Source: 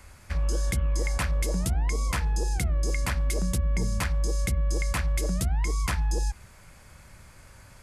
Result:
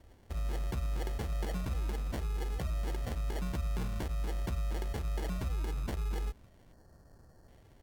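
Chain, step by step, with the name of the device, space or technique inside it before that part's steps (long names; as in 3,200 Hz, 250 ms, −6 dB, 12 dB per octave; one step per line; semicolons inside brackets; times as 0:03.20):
crushed at another speed (tape speed factor 1.25×; decimation without filtering 28×; tape speed factor 0.8×)
gain on a spectral selection 0:06.73–0:07.48, 1,900–4,100 Hz −15 dB
level −8.5 dB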